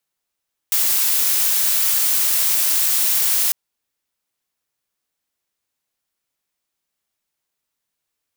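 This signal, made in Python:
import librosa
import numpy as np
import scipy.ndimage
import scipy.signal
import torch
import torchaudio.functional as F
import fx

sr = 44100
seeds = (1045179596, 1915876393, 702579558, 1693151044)

y = fx.noise_colour(sr, seeds[0], length_s=2.8, colour='blue', level_db=-17.5)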